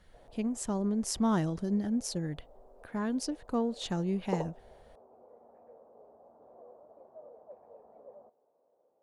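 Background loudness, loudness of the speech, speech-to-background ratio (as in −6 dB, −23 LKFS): −51.0 LKFS, −33.0 LKFS, 18.0 dB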